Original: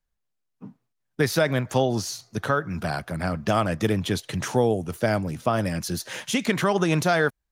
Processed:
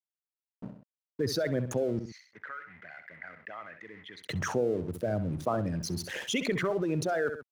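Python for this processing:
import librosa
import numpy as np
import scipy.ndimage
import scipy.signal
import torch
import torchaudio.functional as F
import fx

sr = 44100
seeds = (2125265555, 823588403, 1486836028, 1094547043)

y = fx.envelope_sharpen(x, sr, power=2.0)
y = fx.rotary_switch(y, sr, hz=5.0, then_hz=1.0, switch_at_s=0.58)
y = np.sign(y) * np.maximum(np.abs(y) - 10.0 ** (-47.0 / 20.0), 0.0)
y = fx.bandpass_q(y, sr, hz=2000.0, q=14.0, at=(1.99, 4.23))
y = fx.echo_feedback(y, sr, ms=65, feedback_pct=22, wet_db=-15)
y = fx.env_flatten(y, sr, amount_pct=50)
y = y * librosa.db_to_amplitude(-7.5)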